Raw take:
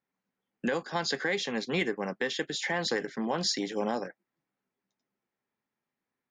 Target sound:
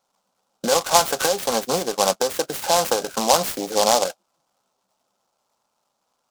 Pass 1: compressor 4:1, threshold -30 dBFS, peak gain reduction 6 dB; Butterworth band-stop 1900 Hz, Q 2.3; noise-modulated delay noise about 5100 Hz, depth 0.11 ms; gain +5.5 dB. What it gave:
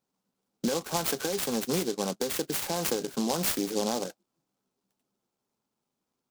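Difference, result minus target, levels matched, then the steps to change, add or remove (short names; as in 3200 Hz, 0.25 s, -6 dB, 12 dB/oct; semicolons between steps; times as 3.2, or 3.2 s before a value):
1000 Hz band -6.0 dB
add after Butterworth band-stop: band shelf 910 Hz +15.5 dB 1.9 oct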